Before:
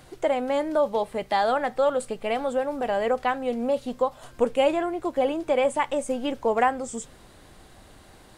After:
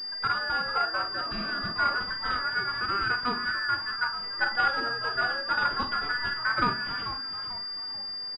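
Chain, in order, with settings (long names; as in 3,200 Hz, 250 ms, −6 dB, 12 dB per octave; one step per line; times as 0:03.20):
frequency inversion band by band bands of 2,000 Hz
parametric band 770 Hz −9.5 dB 1.2 octaves
in parallel at −9.5 dB: sample-and-hold swept by an LFO 16×, swing 60% 0.25 Hz
on the sum: double-tracking delay 47 ms −9 dB
echo with shifted repeats 440 ms, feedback 39%, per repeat −130 Hz, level −11.5 dB
on a send at −12 dB: convolution reverb RT60 0.50 s, pre-delay 3 ms
on the sum: healed spectral selection 0:01.30–0:01.67, 220–1,400 Hz after
switching amplifier with a slow clock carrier 4,800 Hz
level −2 dB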